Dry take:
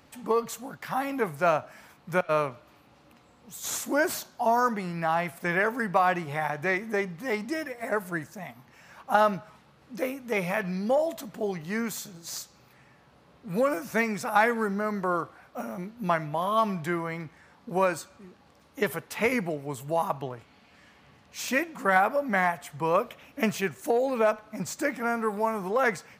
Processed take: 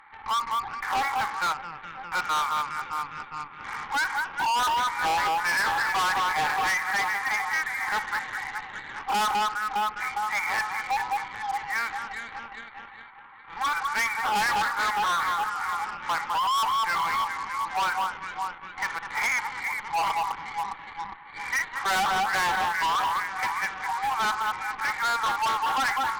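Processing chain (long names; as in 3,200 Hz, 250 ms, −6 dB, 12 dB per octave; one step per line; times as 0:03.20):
harmonic and percussive parts rebalanced harmonic +9 dB
delay that swaps between a low-pass and a high-pass 204 ms, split 1,500 Hz, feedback 72%, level −6.5 dB
0:01.52–0:02.12: downward compressor 2 to 1, threshold −43 dBFS, peak gain reduction 14 dB
brick-wall band-pass 750–2,400 Hz
harmonic generator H 8 −20 dB, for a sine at −28 dBFS
level +5 dB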